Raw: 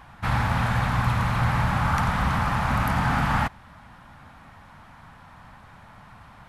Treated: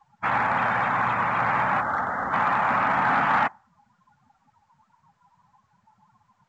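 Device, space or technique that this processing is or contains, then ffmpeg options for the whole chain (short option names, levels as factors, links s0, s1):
telephone: -filter_complex "[0:a]asplit=3[s0][s1][s2];[s0]afade=t=out:st=1.8:d=0.02[s3];[s1]equalizer=f=160:t=o:w=0.67:g=-9,equalizer=f=1000:t=o:w=0.67:g=-7,equalizer=f=2500:t=o:w=0.67:g=-11,equalizer=f=6300:t=o:w=0.67:g=-4,afade=t=in:st=1.8:d=0.02,afade=t=out:st=2.32:d=0.02[s4];[s2]afade=t=in:st=2.32:d=0.02[s5];[s3][s4][s5]amix=inputs=3:normalize=0,afftdn=nr=29:nf=-36,highpass=370,lowpass=3000,asoftclip=type=tanh:threshold=0.15,volume=1.88" -ar 16000 -c:a pcm_mulaw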